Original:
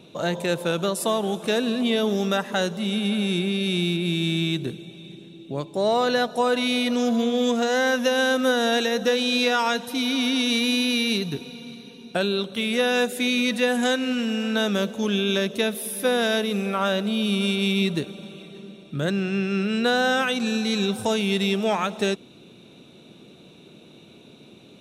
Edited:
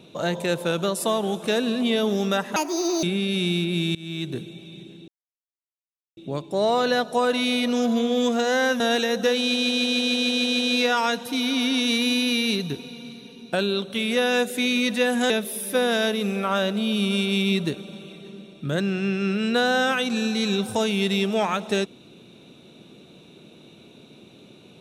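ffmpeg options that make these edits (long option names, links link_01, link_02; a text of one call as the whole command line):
ffmpeg -i in.wav -filter_complex "[0:a]asplit=15[link_01][link_02][link_03][link_04][link_05][link_06][link_07][link_08][link_09][link_10][link_11][link_12][link_13][link_14][link_15];[link_01]atrim=end=2.564[link_16];[link_02]atrim=start=2.56:end=3.35,asetpts=PTS-STARTPTS,asetrate=74088,aresample=44100[link_17];[link_03]atrim=start=3.346:end=4.27,asetpts=PTS-STARTPTS,afade=type=out:start_time=0.92:duration=0.004:curve=hsin:silence=0.0668344[link_18];[link_04]atrim=start=4.27:end=5.4,asetpts=PTS-STARTPTS,afade=type=in:duration=0.46:silence=0.0668344,afade=type=out:start_time=1.126:duration=0.004:curve=hsin,apad=pad_dur=1.09[link_19];[link_05]atrim=start=5.4:end=8.032,asetpts=PTS-STARTPTS,afade=type=in:duration=0.004:curve=hsin[link_20];[link_06]atrim=start=8.618:end=9.362[link_21];[link_07]atrim=start=9.208:end=9.362[link_22];[link_08]atrim=start=9.208:end=9.362[link_23];[link_09]atrim=start=9.208:end=9.362[link_24];[link_10]atrim=start=9.208:end=9.362[link_25];[link_11]atrim=start=9.208:end=9.362[link_26];[link_12]atrim=start=9.208:end=9.362[link_27];[link_13]atrim=start=9.208:end=9.362[link_28];[link_14]atrim=start=9.208:end=13.922[link_29];[link_15]atrim=start=15.598[link_30];[link_16][link_17]acrossfade=duration=0.004:curve1=hsin:curve2=hsin[link_31];[link_18][link_19][link_20]concat=n=3:v=0:a=1[link_32];[link_31][link_32]acrossfade=duration=0.004:curve1=hsin:curve2=hsin[link_33];[link_33][link_21]acrossfade=duration=0.004:curve1=hsin:curve2=hsin[link_34];[link_34][link_22]acrossfade=duration=0.004:curve1=hsin:curve2=hsin[link_35];[link_35][link_23]acrossfade=duration=0.004:curve1=hsin:curve2=hsin[link_36];[link_36][link_24]acrossfade=duration=0.004:curve1=hsin:curve2=hsin[link_37];[link_37][link_25]acrossfade=duration=0.004:curve1=hsin:curve2=hsin[link_38];[link_38][link_26]acrossfade=duration=0.004:curve1=hsin:curve2=hsin[link_39];[link_39][link_27]acrossfade=duration=0.004:curve1=hsin:curve2=hsin[link_40];[link_40][link_28]acrossfade=duration=0.004:curve1=hsin:curve2=hsin[link_41];[link_41][link_29]acrossfade=duration=0.004:curve1=hsin:curve2=hsin[link_42];[link_42][link_30]acrossfade=duration=0.004:curve1=hsin:curve2=hsin" out.wav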